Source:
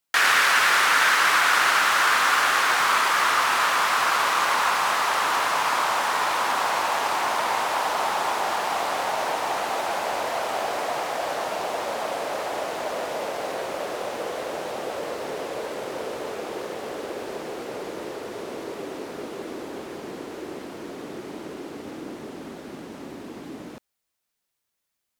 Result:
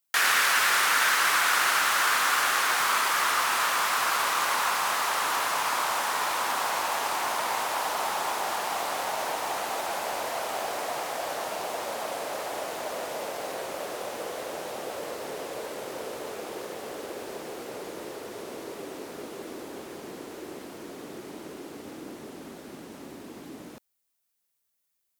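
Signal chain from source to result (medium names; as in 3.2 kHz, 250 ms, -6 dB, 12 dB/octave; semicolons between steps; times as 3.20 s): treble shelf 7.3 kHz +10.5 dB; trim -5 dB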